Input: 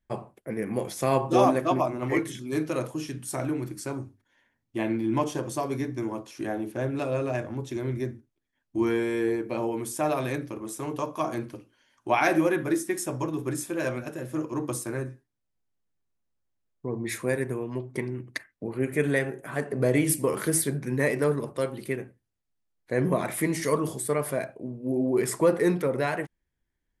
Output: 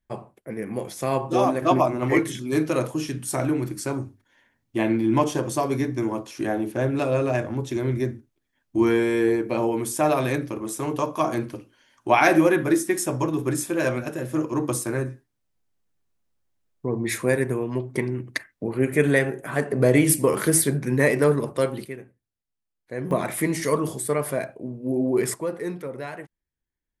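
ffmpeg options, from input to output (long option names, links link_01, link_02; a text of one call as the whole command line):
ffmpeg -i in.wav -af "asetnsamples=nb_out_samples=441:pad=0,asendcmd='1.62 volume volume 5.5dB;21.85 volume volume -5.5dB;23.11 volume volume 2.5dB;25.34 volume volume -7dB',volume=-0.5dB" out.wav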